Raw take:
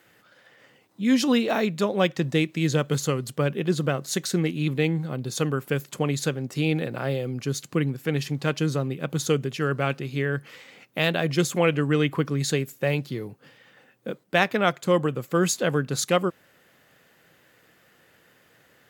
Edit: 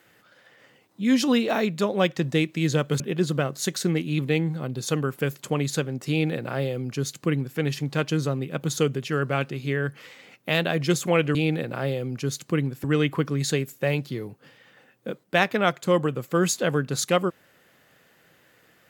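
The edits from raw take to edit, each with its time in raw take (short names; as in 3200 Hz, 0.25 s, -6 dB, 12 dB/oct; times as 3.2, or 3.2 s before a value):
3–3.49 cut
6.58–8.07 copy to 11.84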